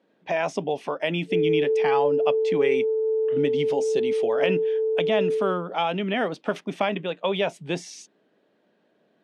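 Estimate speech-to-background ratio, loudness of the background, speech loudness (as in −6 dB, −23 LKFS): −3.5 dB, −24.0 LKFS, −27.5 LKFS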